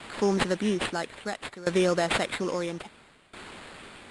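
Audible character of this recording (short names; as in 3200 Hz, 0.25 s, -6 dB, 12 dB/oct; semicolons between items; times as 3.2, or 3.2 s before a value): a quantiser's noise floor 8-bit, dither triangular; tremolo saw down 0.6 Hz, depth 90%; aliases and images of a low sample rate 5900 Hz, jitter 0%; Nellymoser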